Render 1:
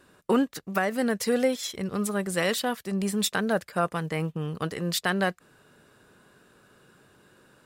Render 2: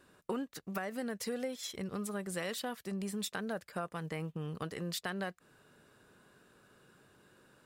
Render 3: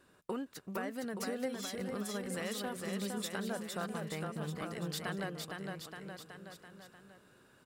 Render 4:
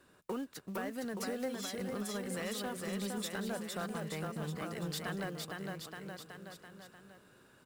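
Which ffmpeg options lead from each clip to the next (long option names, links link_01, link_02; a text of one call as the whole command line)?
ffmpeg -i in.wav -af "acompressor=threshold=-31dB:ratio=3,volume=-5.5dB" out.wav
ffmpeg -i in.wav -af "aecho=1:1:460|874|1247|1582|1884:0.631|0.398|0.251|0.158|0.1,volume=-2dB" out.wav
ffmpeg -i in.wav -filter_complex "[0:a]acrossover=split=230[link_01][link_02];[link_02]acrusher=bits=4:mode=log:mix=0:aa=0.000001[link_03];[link_01][link_03]amix=inputs=2:normalize=0,asoftclip=type=tanh:threshold=-29.5dB,volume=1dB" out.wav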